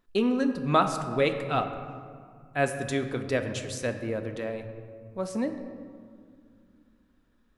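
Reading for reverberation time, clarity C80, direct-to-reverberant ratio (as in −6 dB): 2.3 s, 9.5 dB, 6.0 dB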